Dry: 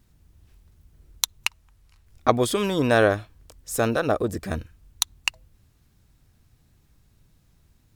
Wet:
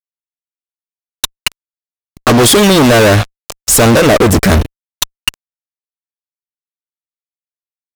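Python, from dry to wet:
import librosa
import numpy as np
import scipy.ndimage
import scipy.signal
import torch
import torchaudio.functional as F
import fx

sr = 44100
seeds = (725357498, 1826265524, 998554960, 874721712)

y = fx.vibrato(x, sr, rate_hz=0.81, depth_cents=14.0)
y = fx.fuzz(y, sr, gain_db=39.0, gate_db=-42.0)
y = y * librosa.db_to_amplitude(7.5)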